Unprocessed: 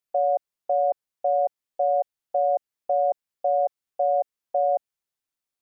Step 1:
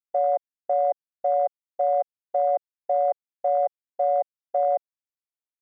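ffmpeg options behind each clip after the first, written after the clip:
-af "afwtdn=0.0355"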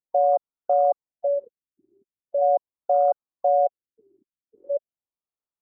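-af "afftfilt=real='re*lt(b*sr/1024,380*pow(1500/380,0.5+0.5*sin(2*PI*0.41*pts/sr)))':imag='im*lt(b*sr/1024,380*pow(1500/380,0.5+0.5*sin(2*PI*0.41*pts/sr)))':win_size=1024:overlap=0.75,volume=1.41"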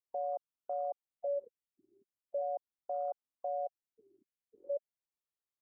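-af "alimiter=limit=0.0708:level=0:latency=1:release=109,volume=0.473"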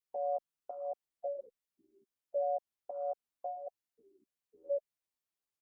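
-filter_complex "[0:a]asplit=2[s0][s1];[s1]adelay=11.2,afreqshift=-1.4[s2];[s0][s2]amix=inputs=2:normalize=1,volume=1.5"

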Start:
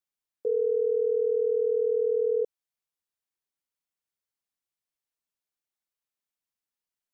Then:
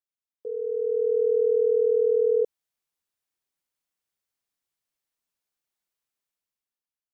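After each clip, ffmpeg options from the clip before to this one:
-af "dynaudnorm=f=200:g=9:m=3.98,volume=0.398"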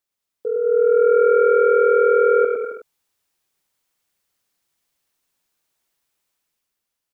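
-af "aeval=exprs='0.178*sin(PI/2*2*val(0)/0.178)':c=same,aecho=1:1:110|198|268.4|324.7|369.8:0.631|0.398|0.251|0.158|0.1"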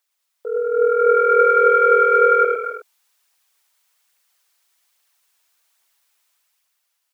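-af "highpass=810,aphaser=in_gain=1:out_gain=1:delay=3.4:decay=0.29:speed=1.2:type=triangular,volume=2.51"

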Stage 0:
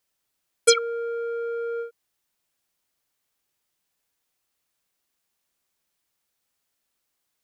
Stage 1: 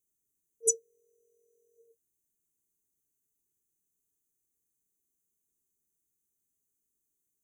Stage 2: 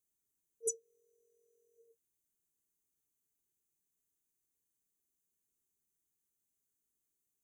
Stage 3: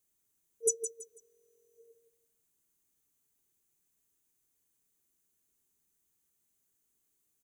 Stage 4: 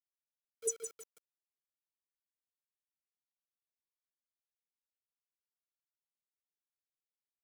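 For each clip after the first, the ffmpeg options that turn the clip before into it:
-af "afftfilt=real='re*(1-between(b*sr/4096,460,5900))':imag='im*(1-between(b*sr/4096,460,5900))':win_size=4096:overlap=0.75,volume=0.708"
-af "acompressor=threshold=0.0355:ratio=4,volume=0.668"
-af "aecho=1:1:164|328|492:0.355|0.0993|0.0278,volume=2.24"
-af "acrusher=bits=7:mix=0:aa=0.000001,volume=0.501"

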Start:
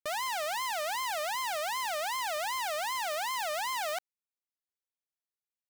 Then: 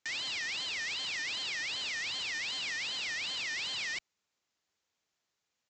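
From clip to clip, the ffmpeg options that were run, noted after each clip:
-af "aresample=16000,aeval=exprs='0.0422*sin(PI/2*7.08*val(0)/0.0422)':c=same,aresample=44100,highpass=58,volume=0.501"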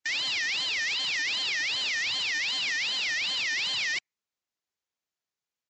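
-af "afftdn=nr=16:nf=-49,volume=2.37"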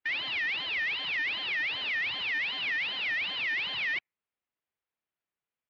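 -af "lowpass=f=3000:w=0.5412,lowpass=f=3000:w=1.3066"

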